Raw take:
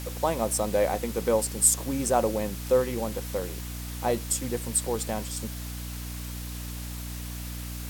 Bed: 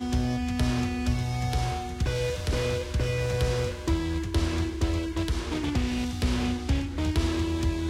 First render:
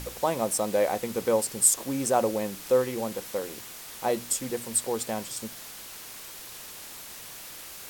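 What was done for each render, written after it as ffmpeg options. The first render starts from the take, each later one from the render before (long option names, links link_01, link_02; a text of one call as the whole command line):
ffmpeg -i in.wav -af "bandreject=frequency=60:width_type=h:width=4,bandreject=frequency=120:width_type=h:width=4,bandreject=frequency=180:width_type=h:width=4,bandreject=frequency=240:width_type=h:width=4,bandreject=frequency=300:width_type=h:width=4" out.wav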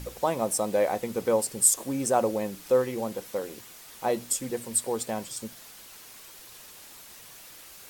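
ffmpeg -i in.wav -af "afftdn=noise_reduction=6:noise_floor=-43" out.wav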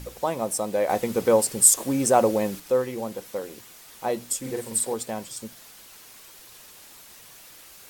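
ffmpeg -i in.wav -filter_complex "[0:a]asettb=1/sr,asplit=3[link_01][link_02][link_03];[link_01]atrim=end=0.894[link_04];[link_02]atrim=start=0.89:end=2.6,asetpts=PTS-STARTPTS,afade=type=in:duration=0.004:curve=qsin,afade=type=out:start_time=1.706:duration=0.004:curve=qsin,acontrast=38[link_05];[link_03]atrim=start=2.596[link_06];[link_04][link_05]acrossfade=duration=0.004:curve1=hsin:curve2=qsin[link_07];[link_07][link_06]acrossfade=duration=0.004:curve1=qsin:curve2=hsin,asettb=1/sr,asplit=3[link_08][link_09][link_10];[link_08]atrim=end=4.404[link_11];[link_09]atrim=start=4.4:end=4.94,asetpts=PTS-STARTPTS,afade=type=in:duration=0.004:curve=qsin,afade=type=out:start_time=0.536:duration=0.004:curve=qsin,asplit=2[link_12][link_13];[link_13]adelay=45,volume=-2.5dB[link_14];[link_12][link_14]amix=inputs=2:normalize=0,atrim=end_sample=23814[link_15];[link_10]atrim=start=4.936[link_16];[link_11][link_15]acrossfade=duration=0.004:curve1=hsin:curve2=qsin[link_17];[link_17][link_16]acrossfade=duration=0.004:curve1=qsin:curve2=hsin" out.wav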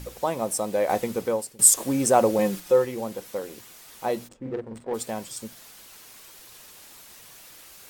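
ffmpeg -i in.wav -filter_complex "[0:a]asettb=1/sr,asplit=3[link_01][link_02][link_03];[link_01]atrim=end=2.384[link_04];[link_02]atrim=start=2.38:end=2.85,asetpts=PTS-STARTPTS,afade=type=in:duration=0.004:curve=qsin,afade=type=out:start_time=0.466:duration=0.004:curve=qsin,aecho=1:1:5.6:0.65,atrim=end_sample=20727[link_05];[link_03]atrim=start=2.846[link_06];[link_04][link_05]acrossfade=duration=0.004:curve1=hsin:curve2=qsin[link_07];[link_07][link_06]acrossfade=duration=0.004:curve1=qsin:curve2=hsin,asplit=3[link_08][link_09][link_10];[link_08]afade=type=out:start_time=4.27:duration=0.02[link_11];[link_09]adynamicsmooth=sensitivity=1.5:basefreq=650,afade=type=in:start_time=4.27:duration=0.02,afade=type=out:start_time=4.93:duration=0.02[link_12];[link_10]afade=type=in:start_time=4.93:duration=0.02[link_13];[link_11][link_12][link_13]amix=inputs=3:normalize=0,asplit=2[link_14][link_15];[link_14]atrim=end=1.59,asetpts=PTS-STARTPTS,afade=type=out:start_time=0.95:duration=0.64:silence=0.0630957[link_16];[link_15]atrim=start=1.59,asetpts=PTS-STARTPTS,afade=type=in:duration=0.004:curve=hsin:silence=0.0630957[link_17];[link_16][link_17]concat=n=2:v=0:a=1" out.wav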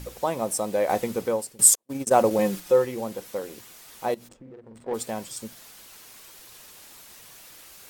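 ffmpeg -i in.wav -filter_complex "[0:a]asettb=1/sr,asplit=3[link_01][link_02][link_03];[link_01]atrim=end=1.754[link_04];[link_02]atrim=start=1.75:end=2.31,asetpts=PTS-STARTPTS,afade=type=in:duration=0.004:curve=qsin,afade=type=out:start_time=0.556:duration=0.004:curve=qsin,agate=range=-48dB:threshold=-23dB:ratio=16:release=100:detection=peak[link_05];[link_03]atrim=start=2.306[link_06];[link_04][link_05]acrossfade=duration=0.004:curve1=hsin:curve2=qsin[link_07];[link_07][link_06]acrossfade=duration=0.004:curve1=qsin:curve2=hsin,asettb=1/sr,asplit=3[link_08][link_09][link_10];[link_08]atrim=end=4.144[link_11];[link_09]atrim=start=4.14:end=4.86,asetpts=PTS-STARTPTS,afade=type=in:duration=0.004:curve=qsin,afade=type=out:start_time=0.716:duration=0.004:curve=qsin,acompressor=threshold=-43dB:ratio=6:attack=3.2:release=140:knee=1:detection=peak[link_12];[link_10]atrim=start=4.856[link_13];[link_11][link_12]acrossfade=duration=0.004:curve1=hsin:curve2=qsin[link_14];[link_14][link_13]acrossfade=duration=0.004:curve1=qsin:curve2=hsin" out.wav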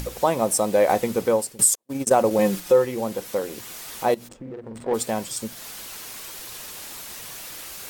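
ffmpeg -i in.wav -filter_complex "[0:a]asplit=2[link_01][link_02];[link_02]acompressor=mode=upward:threshold=-31dB:ratio=2.5,volume=-0.5dB[link_03];[link_01][link_03]amix=inputs=2:normalize=0,alimiter=limit=-7dB:level=0:latency=1:release=477" out.wav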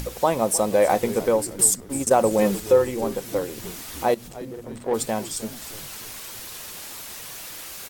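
ffmpeg -i in.wav -filter_complex "[0:a]asplit=7[link_01][link_02][link_03][link_04][link_05][link_06][link_07];[link_02]adelay=307,afreqshift=-110,volume=-16dB[link_08];[link_03]adelay=614,afreqshift=-220,volume=-20.6dB[link_09];[link_04]adelay=921,afreqshift=-330,volume=-25.2dB[link_10];[link_05]adelay=1228,afreqshift=-440,volume=-29.7dB[link_11];[link_06]adelay=1535,afreqshift=-550,volume=-34.3dB[link_12];[link_07]adelay=1842,afreqshift=-660,volume=-38.9dB[link_13];[link_01][link_08][link_09][link_10][link_11][link_12][link_13]amix=inputs=7:normalize=0" out.wav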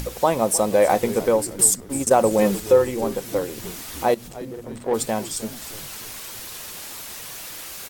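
ffmpeg -i in.wav -af "volume=1.5dB" out.wav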